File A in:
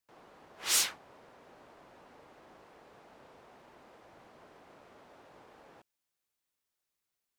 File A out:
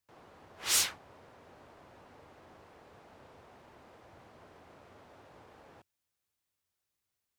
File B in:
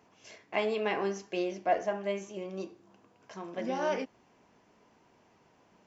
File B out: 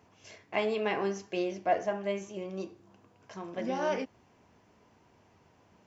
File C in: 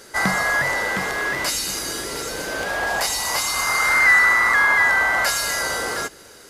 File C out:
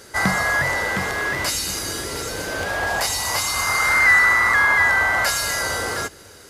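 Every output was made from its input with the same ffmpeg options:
-af "equalizer=f=87:t=o:w=1:g=11"

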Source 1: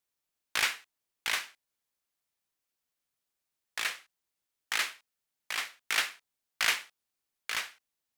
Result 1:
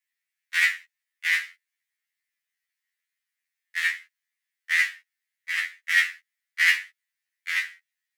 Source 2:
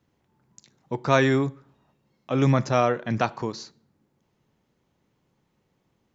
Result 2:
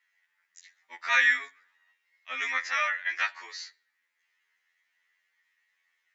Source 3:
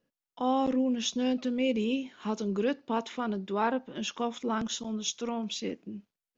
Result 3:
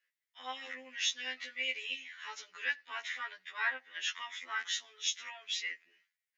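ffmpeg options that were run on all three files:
-af "highpass=f=1900:t=q:w=7.2,afftfilt=real='re*2*eq(mod(b,4),0)':imag='im*2*eq(mod(b,4),0)':win_size=2048:overlap=0.75"

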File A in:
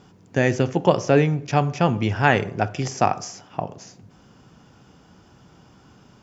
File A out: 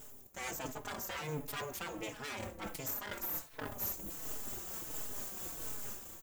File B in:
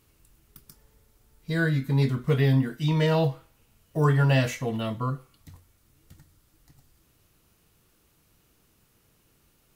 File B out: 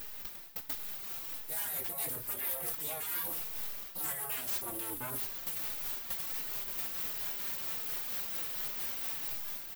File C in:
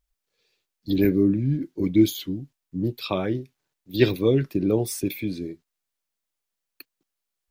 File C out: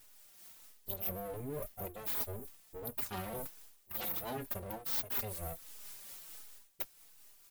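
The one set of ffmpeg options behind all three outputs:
-filter_complex "[0:a]aexciter=amount=10.6:drive=9:freq=7700,dynaudnorm=f=100:g=9:m=3.76,aeval=exprs='abs(val(0))':c=same,afftfilt=real='re*lt(hypot(re,im),0.355)':imag='im*lt(hypot(re,im),0.355)':win_size=1024:overlap=0.75,areverse,acompressor=threshold=0.02:ratio=10,areverse,highshelf=f=9100:g=10.5,asoftclip=type=tanh:threshold=0.0473,tremolo=f=4.4:d=0.3,asplit=2[s0][s1];[s1]adelay=4.2,afreqshift=-1.4[s2];[s0][s2]amix=inputs=2:normalize=1,volume=1.12"

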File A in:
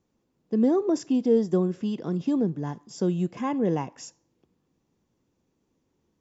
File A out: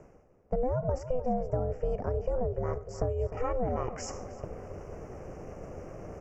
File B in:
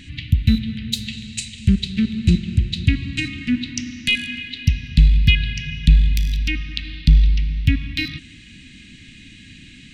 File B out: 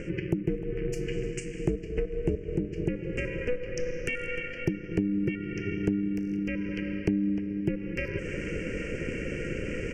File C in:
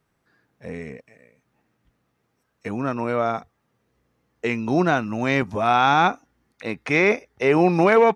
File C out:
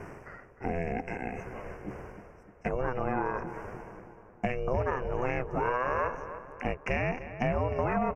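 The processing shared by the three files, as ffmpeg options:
-filter_complex "[0:a]asuperstop=centerf=3700:order=8:qfactor=1.4,areverse,acompressor=mode=upward:threshold=0.0794:ratio=2.5,areverse,aeval=exprs='val(0)*sin(2*PI*250*n/s)':c=same,acompressor=threshold=0.0251:ratio=5,aemphasis=mode=reproduction:type=75fm,asplit=2[s0][s1];[s1]adelay=304,lowpass=f=2500:p=1,volume=0.251,asplit=2[s2][s3];[s3]adelay=304,lowpass=f=2500:p=1,volume=0.54,asplit=2[s4][s5];[s5]adelay=304,lowpass=f=2500:p=1,volume=0.54,asplit=2[s6][s7];[s7]adelay=304,lowpass=f=2500:p=1,volume=0.54,asplit=2[s8][s9];[s9]adelay=304,lowpass=f=2500:p=1,volume=0.54,asplit=2[s10][s11];[s11]adelay=304,lowpass=f=2500:p=1,volume=0.54[s12];[s2][s4][s6][s8][s10][s12]amix=inputs=6:normalize=0[s13];[s0][s13]amix=inputs=2:normalize=0,volume=1.68"

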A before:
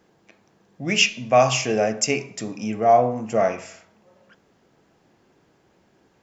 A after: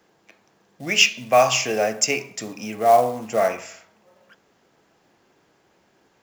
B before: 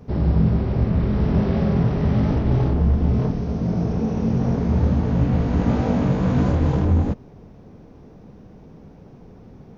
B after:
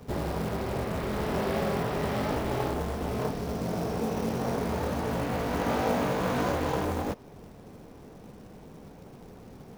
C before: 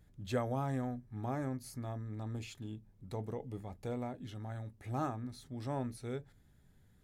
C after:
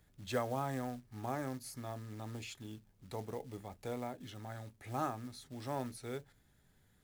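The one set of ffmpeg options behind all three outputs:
-filter_complex "[0:a]acrossover=split=330|900[s0][s1][s2];[s0]acompressor=threshold=0.0447:ratio=12[s3];[s3][s1][s2]amix=inputs=3:normalize=0,acrusher=bits=6:mode=log:mix=0:aa=0.000001,lowshelf=f=370:g=-8.5,volume=1.33"

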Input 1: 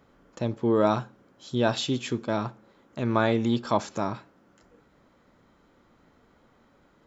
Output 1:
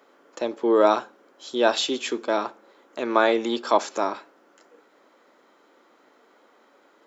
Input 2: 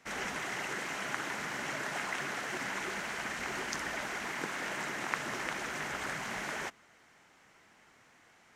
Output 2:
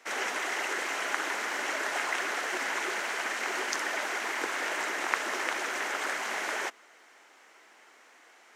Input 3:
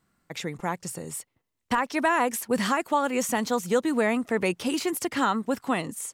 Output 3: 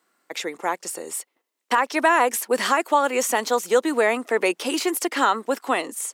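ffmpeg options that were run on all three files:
-af "highpass=f=320:w=0.5412,highpass=f=320:w=1.3066,volume=1.88"

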